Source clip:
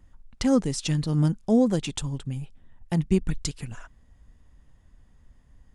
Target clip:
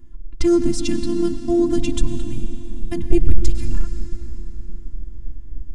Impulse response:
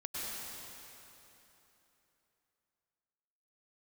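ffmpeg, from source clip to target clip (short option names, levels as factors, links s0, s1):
-filter_complex "[0:a]asplit=2[s0][s1];[1:a]atrim=start_sample=2205[s2];[s1][s2]afir=irnorm=-1:irlink=0,volume=0.282[s3];[s0][s3]amix=inputs=2:normalize=0,asubboost=boost=5.5:cutoff=89,afftfilt=real='hypot(re,im)*cos(PI*b)':imag='0':win_size=512:overlap=0.75,lowshelf=f=350:t=q:w=3:g=11,acontrast=26,volume=0.891"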